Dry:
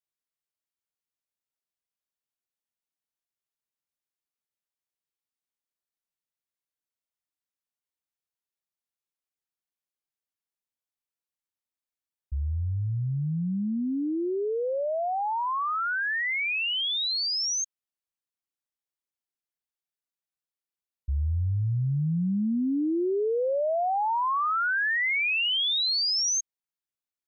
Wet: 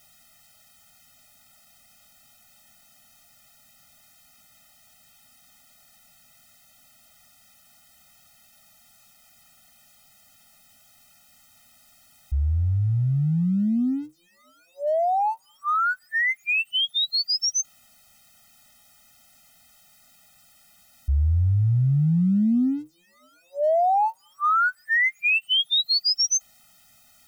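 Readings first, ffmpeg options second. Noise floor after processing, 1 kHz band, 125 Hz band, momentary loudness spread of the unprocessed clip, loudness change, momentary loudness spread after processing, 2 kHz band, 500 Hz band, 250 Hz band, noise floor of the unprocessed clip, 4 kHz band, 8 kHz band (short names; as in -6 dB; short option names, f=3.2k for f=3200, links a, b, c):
-59 dBFS, +3.5 dB, +6.5 dB, 7 LU, +4.0 dB, 8 LU, +2.5 dB, 0.0 dB, +4.0 dB, under -85 dBFS, +3.0 dB, n/a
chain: -af "aeval=exprs='val(0)+0.5*0.00316*sgn(val(0))':c=same,afftfilt=real='re*eq(mod(floor(b*sr/1024/300),2),0)':imag='im*eq(mod(floor(b*sr/1024/300),2),0)':win_size=1024:overlap=0.75,volume=6dB"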